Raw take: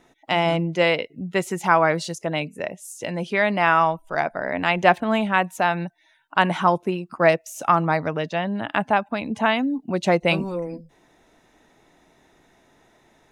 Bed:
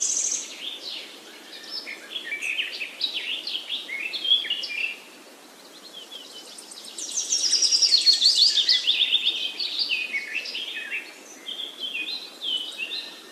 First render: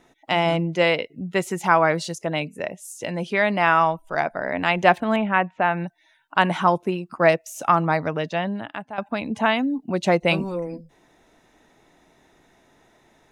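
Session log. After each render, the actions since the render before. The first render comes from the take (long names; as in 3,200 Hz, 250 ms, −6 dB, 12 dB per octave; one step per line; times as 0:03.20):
0:05.16–0:05.84: low-pass filter 2,700 Hz 24 dB per octave
0:08.48–0:08.98: fade out quadratic, to −15.5 dB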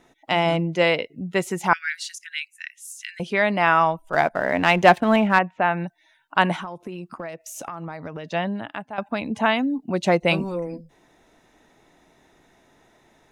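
0:01.73–0:03.20: Butterworth high-pass 1,500 Hz 96 dB per octave
0:04.13–0:05.39: leveller curve on the samples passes 1
0:06.55–0:08.32: downward compressor 16 to 1, threshold −29 dBFS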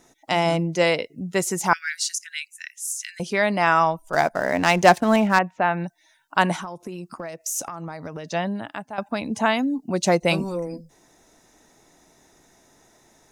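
high shelf with overshoot 4,200 Hz +8.5 dB, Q 1.5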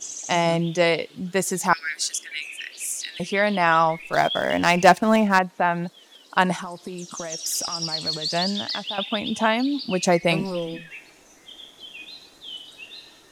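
mix in bed −10 dB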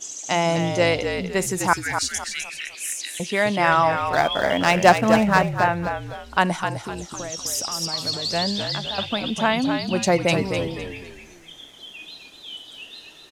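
echo with shifted repeats 254 ms, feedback 35%, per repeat −54 Hz, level −7 dB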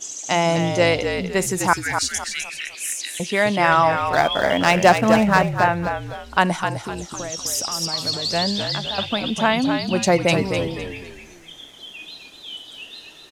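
level +2 dB
brickwall limiter −3 dBFS, peak gain reduction 3 dB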